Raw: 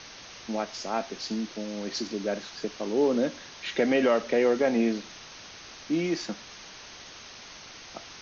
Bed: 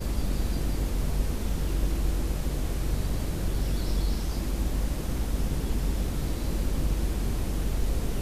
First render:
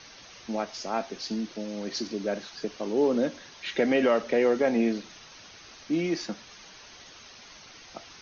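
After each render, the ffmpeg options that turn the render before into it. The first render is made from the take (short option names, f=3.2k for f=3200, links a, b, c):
-af "afftdn=nr=6:nf=-46"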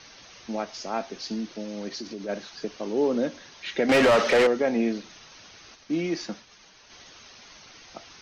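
-filter_complex "[0:a]asplit=3[a][b][c];[a]afade=t=out:st=1.88:d=0.02[d];[b]acompressor=threshold=-33dB:ratio=2.5:attack=3.2:release=140:knee=1:detection=peak,afade=t=in:st=1.88:d=0.02,afade=t=out:st=2.28:d=0.02[e];[c]afade=t=in:st=2.28:d=0.02[f];[d][e][f]amix=inputs=3:normalize=0,asettb=1/sr,asplit=3[g][h][i];[g]atrim=end=3.894[j];[h]atrim=start=3.89:end=4.47,asetpts=PTS-STARTPTS,afade=t=in:d=0.004:c=qsin,afade=t=out:st=0.576:d=0.004:c=qsin,asplit=2[k][l];[l]highpass=f=720:p=1,volume=25dB,asoftclip=type=tanh:threshold=-12dB[m];[k][m]amix=inputs=2:normalize=0,lowpass=f=4.9k:p=1,volume=-6dB[n];[i]atrim=start=4.466[o];[j][n]acrossfade=d=0.004:c1=hsin:c2=qsin[p];[p][o]acrossfade=d=0.004:c1=qsin:c2=hsin,asplit=3[q][r][s];[q]afade=t=out:st=5.74:d=0.02[t];[r]agate=range=-33dB:threshold=-45dB:ratio=3:release=100:detection=peak,afade=t=in:st=5.74:d=0.02,afade=t=out:st=6.89:d=0.02[u];[s]afade=t=in:st=6.89:d=0.02[v];[t][u][v]amix=inputs=3:normalize=0"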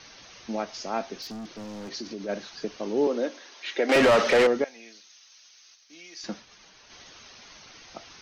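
-filter_complex "[0:a]asettb=1/sr,asplit=3[a][b][c];[a]atrim=end=1.224[d];[b]atrim=start=1.22:end=1.9,asetpts=PTS-STARTPTS,afade=t=in:d=0.004:c=qsin,afade=t=out:st=0.676:d=0.004:c=qsin,asoftclip=type=hard:threshold=-35.5dB[e];[c]atrim=start=1.896[f];[d][e]acrossfade=d=0.004:c1=hsin:c2=qsin[g];[g][f]acrossfade=d=0.004:c1=qsin:c2=hsin,asettb=1/sr,asplit=3[h][i][j];[h]atrim=end=3.074[k];[i]atrim=start=3.07:end=3.96,asetpts=PTS-STARTPTS,afade=t=in:d=0.004:c=qsin,afade=t=out:st=0.886:d=0.004:c=qsin,highpass=f=290:w=0.5412,highpass=f=290:w=1.3066[l];[j]atrim=start=3.956[m];[k][l]acrossfade=d=0.004:c1=hsin:c2=qsin[n];[n][m]acrossfade=d=0.004:c1=qsin:c2=hsin,asettb=1/sr,asplit=3[o][p][q];[o]atrim=end=4.644[r];[p]atrim=start=4.64:end=6.24,asetpts=PTS-STARTPTS,afade=t=in:d=0.004:c=qsin,afade=t=out:st=1.596:d=0.004:c=qsin,aderivative[s];[q]atrim=start=6.236[t];[r][s]acrossfade=d=0.004:c1=hsin:c2=qsin[u];[u][t]acrossfade=d=0.004:c1=qsin:c2=hsin"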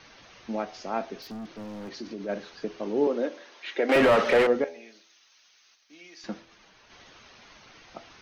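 -af "equalizer=f=6k:w=0.85:g=-9,bandreject=f=82.88:t=h:w=4,bandreject=f=165.76:t=h:w=4,bandreject=f=248.64:t=h:w=4,bandreject=f=331.52:t=h:w=4,bandreject=f=414.4:t=h:w=4,bandreject=f=497.28:t=h:w=4,bandreject=f=580.16:t=h:w=4,bandreject=f=663.04:t=h:w=4,bandreject=f=745.92:t=h:w=4,bandreject=f=828.8:t=h:w=4"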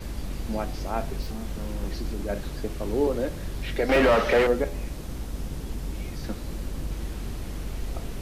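-filter_complex "[1:a]volume=-5dB[a];[0:a][a]amix=inputs=2:normalize=0"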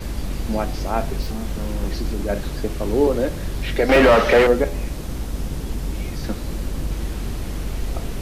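-af "volume=6.5dB"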